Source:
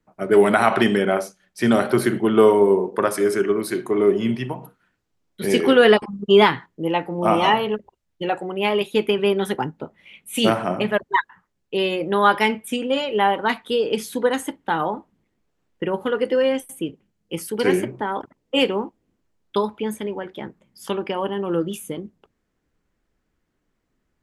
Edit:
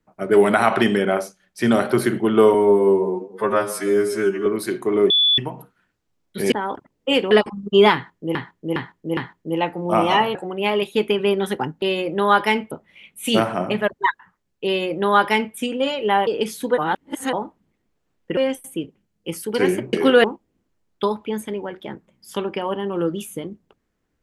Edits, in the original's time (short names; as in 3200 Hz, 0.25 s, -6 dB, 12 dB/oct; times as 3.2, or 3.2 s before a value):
2.54–3.5 stretch 2×
4.14–4.42 bleep 3450 Hz -13 dBFS
5.56–5.87 swap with 17.98–18.77
6.5–6.91 loop, 4 plays
7.68–8.34 cut
11.76–12.65 copy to 9.81
13.37–13.79 cut
14.3–14.85 reverse
15.89–16.42 cut